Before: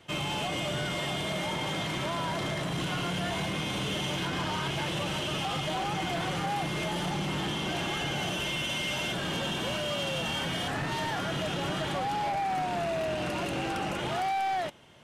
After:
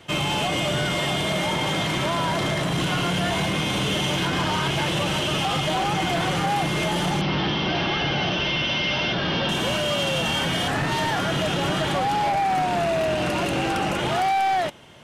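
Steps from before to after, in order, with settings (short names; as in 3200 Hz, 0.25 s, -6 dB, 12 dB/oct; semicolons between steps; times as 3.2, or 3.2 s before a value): 7.21–9.49 steep low-pass 5600 Hz 72 dB/oct; gain +8 dB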